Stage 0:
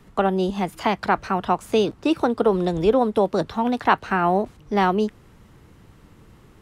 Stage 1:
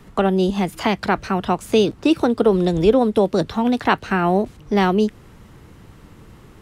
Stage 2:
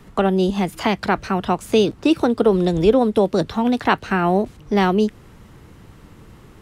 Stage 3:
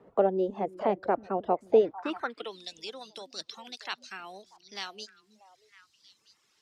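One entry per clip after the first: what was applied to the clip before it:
dynamic bell 980 Hz, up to -7 dB, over -33 dBFS, Q 0.82; trim +5.5 dB
no audible change
repeats whose band climbs or falls 318 ms, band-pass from 250 Hz, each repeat 1.4 oct, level -8 dB; band-pass sweep 540 Hz -> 5 kHz, 1.78–2.68 s; reverb removal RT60 0.97 s

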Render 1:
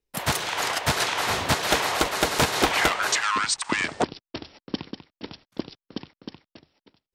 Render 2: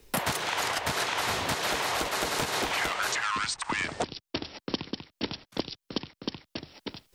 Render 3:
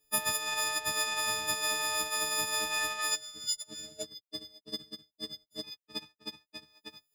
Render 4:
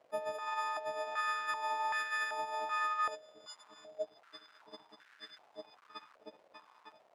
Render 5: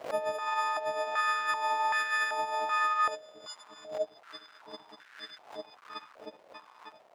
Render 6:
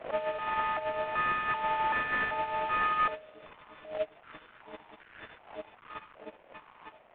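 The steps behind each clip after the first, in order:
peak limiter -15 dBFS, peak gain reduction 7.5 dB; three bands compressed up and down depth 100%; trim -3.5 dB
partials quantised in pitch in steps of 6 st; time-frequency box 3.15–5.64 s, 710–3400 Hz -23 dB; power-law waveshaper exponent 1.4; trim -7.5 dB
crackle 570 per s -42 dBFS; step-sequenced band-pass 2.6 Hz 580–1600 Hz; trim +7 dB
swell ahead of each attack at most 140 dB/s; trim +6 dB
CVSD coder 16 kbps

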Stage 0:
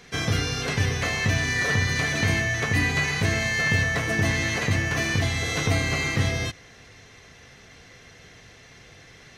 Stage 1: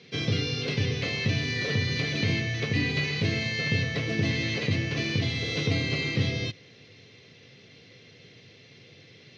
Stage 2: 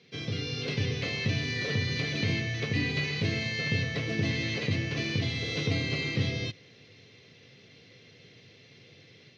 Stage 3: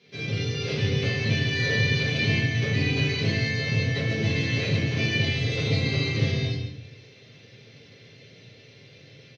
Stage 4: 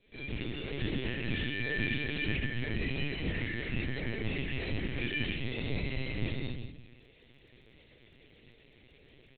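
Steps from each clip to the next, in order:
elliptic band-pass 110–4600 Hz, stop band 50 dB; high-order bell 1.1 kHz -11.5 dB
level rider gain up to 5 dB; trim -7.5 dB
delay 140 ms -9 dB; simulated room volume 75 m³, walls mixed, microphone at 1.3 m; trim -2.5 dB
LPC vocoder at 8 kHz pitch kept; crackle 15 per s -56 dBFS; trim -9 dB

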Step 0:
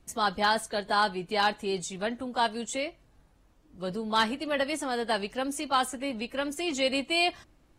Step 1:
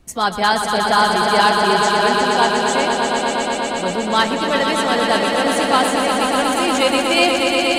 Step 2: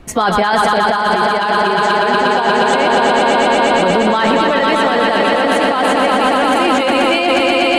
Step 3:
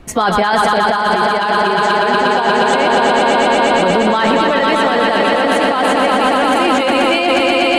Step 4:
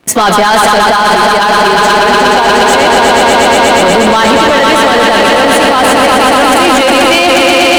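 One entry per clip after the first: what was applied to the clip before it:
echo with a slow build-up 120 ms, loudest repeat 5, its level -6 dB; trim +8.5 dB
tone controls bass -4 dB, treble -12 dB; compressor with a negative ratio -22 dBFS, ratio -1; loudness maximiser +14 dB; trim -3 dB
no audible change
high-pass 160 Hz 12 dB/octave; treble shelf 5.6 kHz +10 dB; waveshaping leveller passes 3; trim -1 dB

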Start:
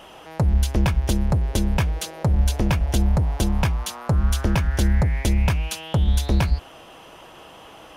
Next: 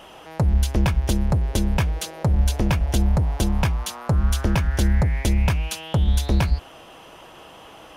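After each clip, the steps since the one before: no audible change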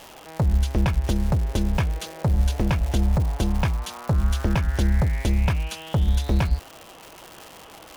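treble shelf 5.8 kHz -8.5 dB; crackle 270 per s -28 dBFS; trim -1.5 dB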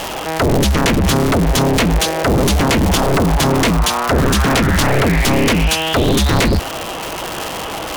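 sine folder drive 17 dB, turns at -10 dBFS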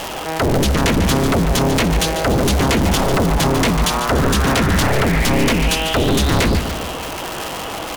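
feedback delay 145 ms, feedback 55%, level -9.5 dB; trim -2.5 dB

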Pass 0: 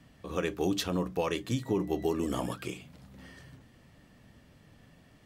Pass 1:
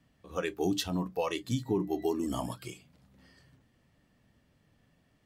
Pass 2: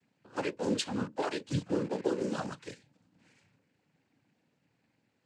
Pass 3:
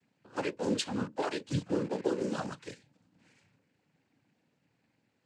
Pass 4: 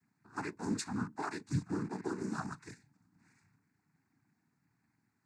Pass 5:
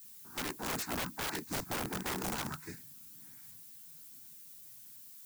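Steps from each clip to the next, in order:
spectral noise reduction 10 dB
in parallel at -5.5 dB: word length cut 6-bit, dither none; on the sum: noise-vocoded speech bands 8; trim -4.5 dB
no audible change
static phaser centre 1.3 kHz, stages 4
added noise violet -55 dBFS; chorus voices 2, 0.72 Hz, delay 14 ms, depth 2.2 ms; integer overflow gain 36.5 dB; trim +6 dB

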